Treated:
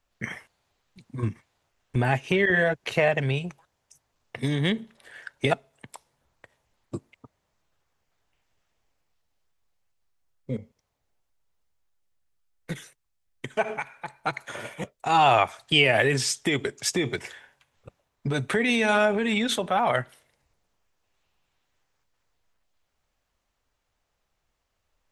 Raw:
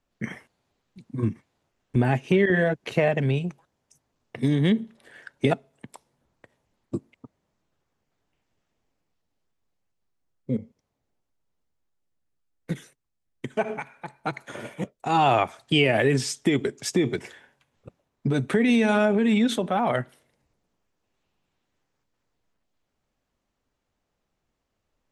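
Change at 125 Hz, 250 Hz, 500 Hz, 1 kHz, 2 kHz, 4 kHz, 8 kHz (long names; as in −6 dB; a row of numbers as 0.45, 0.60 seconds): −3.0, −5.5, −1.5, +1.5, +3.5, +4.0, +4.0 decibels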